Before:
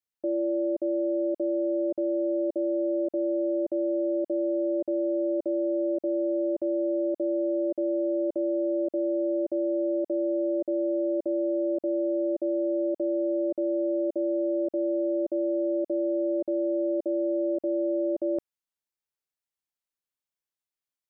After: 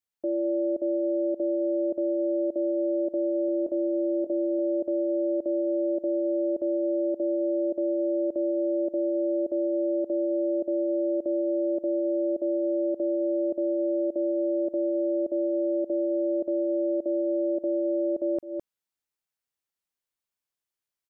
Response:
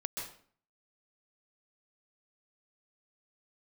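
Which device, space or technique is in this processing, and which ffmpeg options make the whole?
ducked delay: -filter_complex "[0:a]asettb=1/sr,asplit=3[a][b][c];[a]atrim=end=3.464[d];[b]atrim=start=3.46:end=4.59,asetpts=PTS-STARTPTS,afade=t=in:d=0.004:c=qsin,afade=t=out:st=1.126:d=0.004:c=qsin,asplit=2[e][f];[f]adelay=23,volume=-9dB[g];[e][g]amix=inputs=2:normalize=0,atrim=end_sample=49833[h];[c]atrim=start=4.586[i];[d][h]acrossfade=d=0.004:c1=hsin:c2=qsin[j];[j][i]acrossfade=d=0.004:c1=qsin:c2=hsin,asplit=3[k][l][m];[l]adelay=210,volume=-3dB[n];[m]apad=whole_len=939563[o];[n][o]sidechaincompress=threshold=-41dB:ratio=8:attack=5.3:release=170[p];[k][p]amix=inputs=2:normalize=0"

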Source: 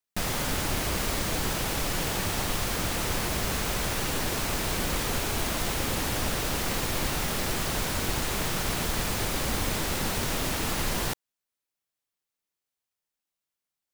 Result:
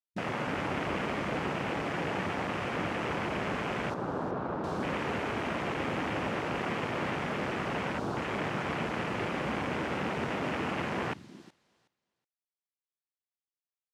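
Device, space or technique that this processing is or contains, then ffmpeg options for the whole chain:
over-cleaned archive recording: -filter_complex "[0:a]asettb=1/sr,asplit=3[a][b][c];[a]atrim=end=3.944[d];[b]atrim=start=3.94:end=4.64,asetpts=PTS-STARTPTS,afade=t=in:d=0.004:c=qsin,afade=t=out:st=0.696:d=0.004:c=qsin,lowpass=2k[e];[c]atrim=start=4.636[f];[d][e]acrossfade=d=0.004:c1=hsin:c2=qsin[g];[g][f]acrossfade=d=0.004:c1=qsin:c2=hsin,highpass=150,lowpass=5.7k,aecho=1:1:370|740|1110:0.316|0.0632|0.0126,afwtdn=0.0251"

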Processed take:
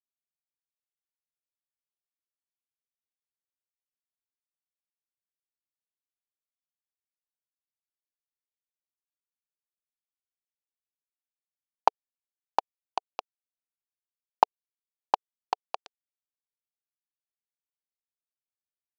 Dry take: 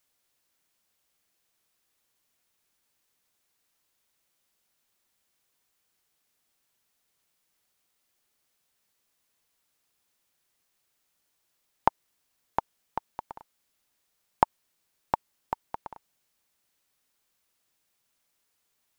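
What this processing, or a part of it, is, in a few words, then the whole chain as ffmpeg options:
hand-held game console: -af "acrusher=bits=3:mix=0:aa=0.000001,highpass=420,equalizer=f=440:t=q:w=4:g=4,equalizer=f=750:t=q:w=4:g=6,equalizer=f=2k:t=q:w=4:g=-7,lowpass=f=5.1k:w=0.5412,lowpass=f=5.1k:w=1.3066"

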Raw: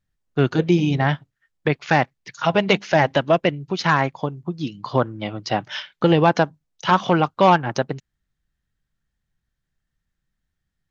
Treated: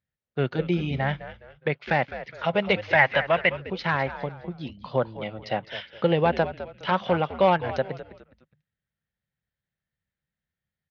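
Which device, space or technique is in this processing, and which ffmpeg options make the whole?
frequency-shifting delay pedal into a guitar cabinet: -filter_complex "[0:a]asplit=4[a][b][c][d];[b]adelay=207,afreqshift=-95,volume=-13dB[e];[c]adelay=414,afreqshift=-190,volume=-22.1dB[f];[d]adelay=621,afreqshift=-285,volume=-31.2dB[g];[a][e][f][g]amix=inputs=4:normalize=0,highpass=81,equalizer=f=300:t=q:w=4:g=-6,equalizer=f=540:t=q:w=4:g=6,equalizer=f=1.1k:t=q:w=4:g=-4,equalizer=f=2.1k:t=q:w=4:g=4,lowpass=f=4.3k:w=0.5412,lowpass=f=4.3k:w=1.3066,asettb=1/sr,asplit=3[h][i][j];[h]atrim=end=2.934[k];[i]atrim=start=2.93:end=3.6,asetpts=PTS-STARTPTS,afade=t=in:d=0.004:c=qsin,afade=t=out:st=0.666:d=0.004:c=qsin,equalizer=f=250:t=o:w=1:g=-5,equalizer=f=500:t=o:w=1:g=-5,equalizer=f=1k:t=o:w=1:g=6,equalizer=f=2k:t=o:w=1:g=9[l];[j]atrim=start=3.596[m];[k][l]acrossfade=d=0.004:c1=hsin:c2=qsin[n];[n][m]acrossfade=d=0.004:c1=qsin:c2=hsin,volume=-6.5dB"

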